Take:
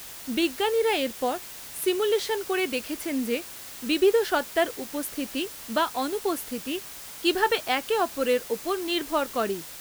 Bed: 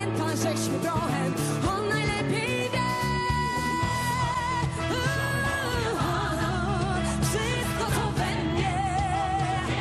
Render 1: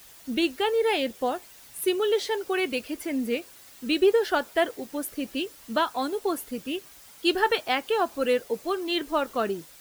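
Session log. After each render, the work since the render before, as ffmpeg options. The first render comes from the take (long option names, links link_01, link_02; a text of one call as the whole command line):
ffmpeg -i in.wav -af "afftdn=noise_reduction=10:noise_floor=-41" out.wav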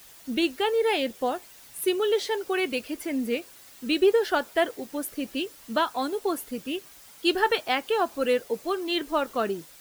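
ffmpeg -i in.wav -af "equalizer=frequency=62:width_type=o:width=0.87:gain=-3.5" out.wav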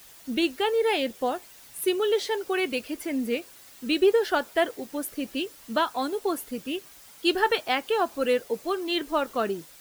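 ffmpeg -i in.wav -af anull out.wav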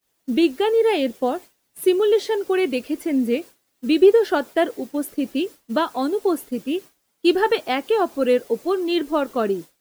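ffmpeg -i in.wav -af "agate=range=-33dB:threshold=-36dB:ratio=3:detection=peak,equalizer=frequency=300:width=0.61:gain=8.5" out.wav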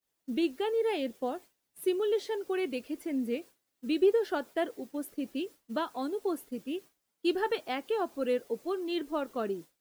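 ffmpeg -i in.wav -af "volume=-11.5dB" out.wav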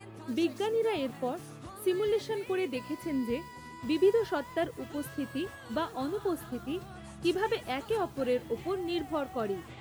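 ffmpeg -i in.wav -i bed.wav -filter_complex "[1:a]volume=-19.5dB[link_01];[0:a][link_01]amix=inputs=2:normalize=0" out.wav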